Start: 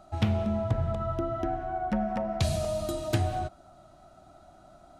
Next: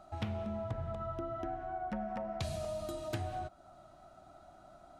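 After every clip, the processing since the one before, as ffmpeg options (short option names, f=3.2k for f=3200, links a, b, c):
-af "equalizer=f=1.2k:t=o:w=2.8:g=4,acompressor=threshold=-40dB:ratio=1.5,volume=-5.5dB"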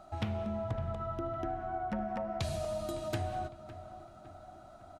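-filter_complex "[0:a]asplit=2[a][b];[b]adelay=557,lowpass=f=2.4k:p=1,volume=-14dB,asplit=2[c][d];[d]adelay=557,lowpass=f=2.4k:p=1,volume=0.54,asplit=2[e][f];[f]adelay=557,lowpass=f=2.4k:p=1,volume=0.54,asplit=2[g][h];[h]adelay=557,lowpass=f=2.4k:p=1,volume=0.54,asplit=2[i][j];[j]adelay=557,lowpass=f=2.4k:p=1,volume=0.54[k];[a][c][e][g][i][k]amix=inputs=6:normalize=0,volume=2.5dB"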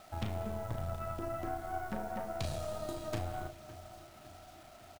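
-filter_complex "[0:a]acrusher=bits=8:mix=0:aa=0.000001,aeval=exprs='(tanh(28.2*val(0)+0.75)-tanh(0.75))/28.2':c=same,asplit=2[a][b];[b]adelay=36,volume=-7dB[c];[a][c]amix=inputs=2:normalize=0,volume=1dB"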